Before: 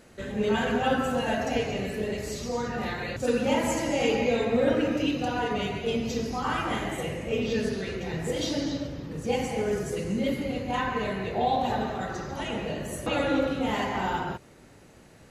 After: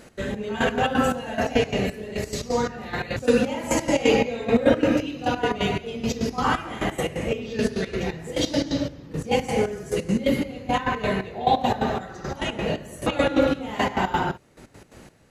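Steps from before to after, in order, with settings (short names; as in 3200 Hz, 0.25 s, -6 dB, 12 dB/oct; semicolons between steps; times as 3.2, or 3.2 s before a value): step gate "x.xx...x." 174 bpm -12 dB; gain +7 dB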